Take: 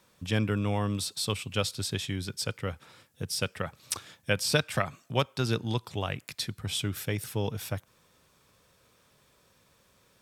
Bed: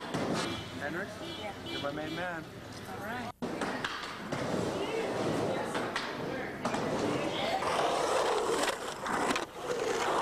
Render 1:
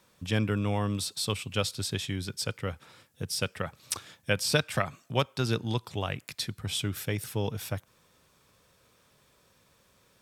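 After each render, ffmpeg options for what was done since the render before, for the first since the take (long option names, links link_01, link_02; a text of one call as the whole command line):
ffmpeg -i in.wav -af anull out.wav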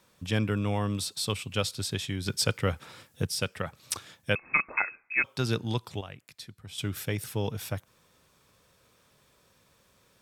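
ffmpeg -i in.wav -filter_complex "[0:a]asettb=1/sr,asplit=3[link_01][link_02][link_03];[link_01]atrim=end=4.354[link_04];[link_02]atrim=start=4.35:end=5.24,asetpts=PTS-STARTPTS,afade=type=in:duration=0.004:curve=qsin,afade=type=out:start_time=0.886:duration=0.004:curve=qsin,lowpass=frequency=2300:width_type=q:width=0.5098,lowpass=frequency=2300:width_type=q:width=0.6013,lowpass=frequency=2300:width_type=q:width=0.9,lowpass=frequency=2300:width_type=q:width=2.563,afreqshift=-2700[link_05];[link_03]atrim=start=5.236[link_06];[link_04][link_05]acrossfade=duration=0.004:curve1=hsin:curve2=qsin[link_07];[link_07][link_06]acrossfade=duration=0.004:curve1=qsin:curve2=hsin,asplit=5[link_08][link_09][link_10][link_11][link_12];[link_08]atrim=end=2.262[link_13];[link_09]atrim=start=2.258:end=3.272,asetpts=PTS-STARTPTS,volume=6dB[link_14];[link_10]atrim=start=3.268:end=6.01,asetpts=PTS-STARTPTS,afade=type=out:start_time=2.472:duration=0.27:curve=log:silence=0.281838[link_15];[link_11]atrim=start=6.01:end=6.78,asetpts=PTS-STARTPTS,volume=-11dB[link_16];[link_12]atrim=start=6.78,asetpts=PTS-STARTPTS,afade=type=in:duration=0.27:curve=log:silence=0.281838[link_17];[link_13][link_14]acrossfade=duration=0.004:curve1=hsin:curve2=hsin[link_18];[link_15][link_16][link_17]concat=n=3:v=0:a=1[link_19];[link_18][link_19]acrossfade=duration=0.004:curve1=hsin:curve2=hsin" out.wav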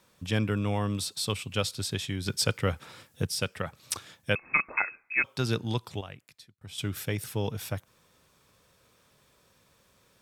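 ffmpeg -i in.wav -filter_complex "[0:a]asplit=2[link_01][link_02];[link_01]atrim=end=6.61,asetpts=PTS-STARTPTS,afade=type=out:start_time=6.12:duration=0.49[link_03];[link_02]atrim=start=6.61,asetpts=PTS-STARTPTS,afade=type=in:duration=0.004:curve=hsin[link_04];[link_03][link_04]concat=n=2:v=0:a=1" out.wav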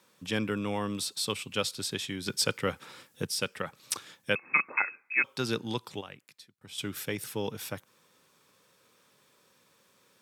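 ffmpeg -i in.wav -af "highpass=190,equalizer=frequency=670:width_type=o:width=0.22:gain=-7" out.wav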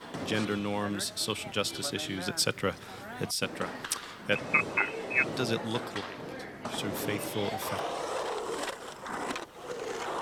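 ffmpeg -i in.wav -i bed.wav -filter_complex "[1:a]volume=-4.5dB[link_01];[0:a][link_01]amix=inputs=2:normalize=0" out.wav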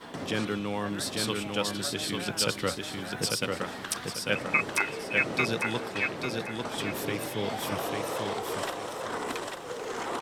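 ffmpeg -i in.wav -af "aecho=1:1:845|1690|2535|3380:0.668|0.207|0.0642|0.0199" out.wav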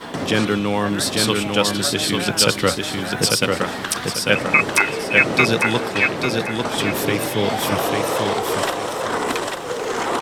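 ffmpeg -i in.wav -af "volume=11.5dB,alimiter=limit=-1dB:level=0:latency=1" out.wav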